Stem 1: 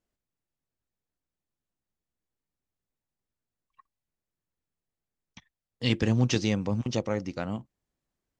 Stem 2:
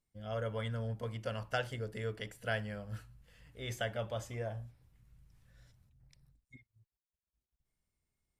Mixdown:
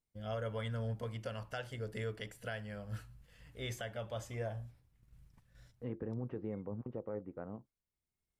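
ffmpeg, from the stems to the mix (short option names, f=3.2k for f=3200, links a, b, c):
-filter_complex "[0:a]lowpass=f=1.5k:w=0.5412,lowpass=f=1.5k:w=1.3066,equalizer=f=440:t=o:w=0.72:g=8,alimiter=limit=-16dB:level=0:latency=1:release=36,volume=-14.5dB,asplit=2[a][b];[1:a]alimiter=level_in=7dB:limit=-24dB:level=0:latency=1:release=473,volume=-7dB,volume=1.5dB[c];[b]apad=whole_len=370142[d];[c][d]sidechaincompress=threshold=-50dB:ratio=3:attack=16:release=809[e];[a][e]amix=inputs=2:normalize=0,agate=range=-7dB:threshold=-60dB:ratio=16:detection=peak"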